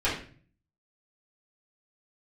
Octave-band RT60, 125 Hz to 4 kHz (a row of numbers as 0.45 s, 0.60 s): 0.75 s, 0.65 s, 0.45 s, 0.40 s, 0.45 s, 0.40 s